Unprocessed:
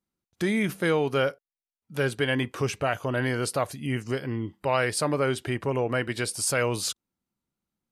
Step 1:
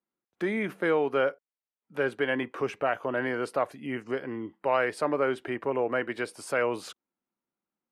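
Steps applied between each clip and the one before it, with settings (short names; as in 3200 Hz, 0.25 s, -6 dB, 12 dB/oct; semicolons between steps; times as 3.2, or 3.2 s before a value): three-band isolator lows -19 dB, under 230 Hz, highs -17 dB, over 2500 Hz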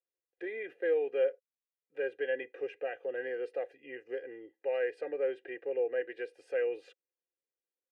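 vowel filter e; comb 2.5 ms, depth 80%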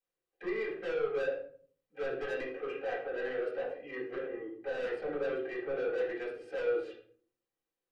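soft clip -37 dBFS, distortion -7 dB; reverb RT60 0.50 s, pre-delay 4 ms, DRR -7 dB; gain -4 dB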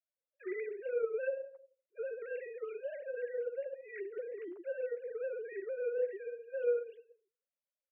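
sine-wave speech; in parallel at +1.5 dB: compressor, threshold -41 dBFS, peak gain reduction 17 dB; on the sum: gain -5.5 dB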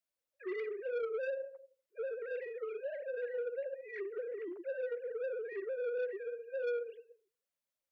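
soft clip -34.5 dBFS, distortion -10 dB; gain +2.5 dB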